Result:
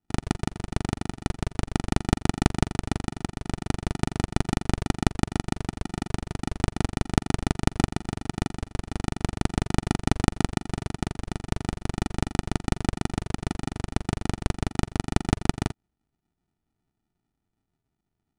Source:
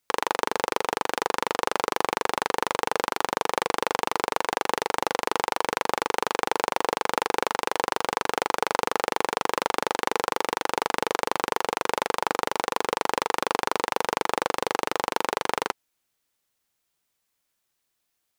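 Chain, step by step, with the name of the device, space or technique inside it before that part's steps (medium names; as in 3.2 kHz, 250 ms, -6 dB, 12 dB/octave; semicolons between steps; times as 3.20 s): crushed at another speed (playback speed 2×; sample-and-hold 41×; playback speed 0.5×)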